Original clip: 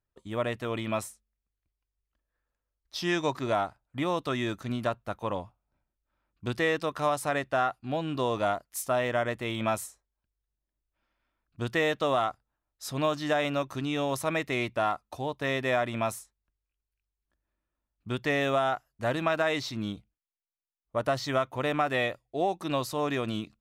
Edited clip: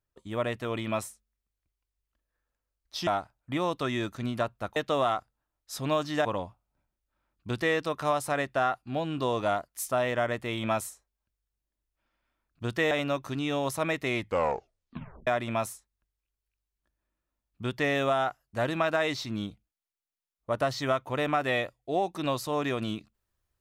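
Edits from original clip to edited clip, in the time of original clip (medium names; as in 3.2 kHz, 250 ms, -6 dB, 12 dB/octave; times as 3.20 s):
3.07–3.53 s: delete
11.88–13.37 s: move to 5.22 s
14.61 s: tape stop 1.12 s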